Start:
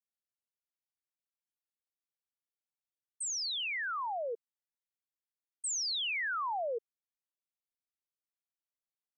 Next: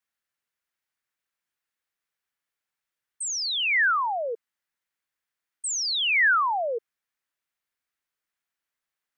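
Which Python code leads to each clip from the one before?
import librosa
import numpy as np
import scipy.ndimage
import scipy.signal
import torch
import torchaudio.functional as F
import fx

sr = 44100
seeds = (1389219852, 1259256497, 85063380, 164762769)

y = fx.peak_eq(x, sr, hz=1700.0, db=10.0, octaves=1.4)
y = F.gain(torch.from_numpy(y), 5.5).numpy()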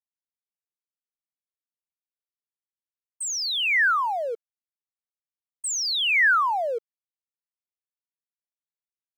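y = np.sign(x) * np.maximum(np.abs(x) - 10.0 ** (-51.5 / 20.0), 0.0)
y = F.gain(torch.from_numpy(y), 1.5).numpy()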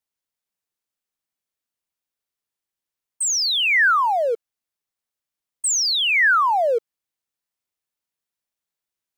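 y = fx.rider(x, sr, range_db=10, speed_s=0.5)
y = F.gain(torch.from_numpy(y), 5.5).numpy()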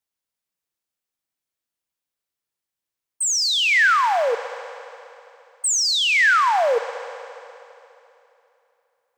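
y = fx.rev_fdn(x, sr, rt60_s=3.0, lf_ratio=1.0, hf_ratio=0.95, size_ms=18.0, drr_db=10.5)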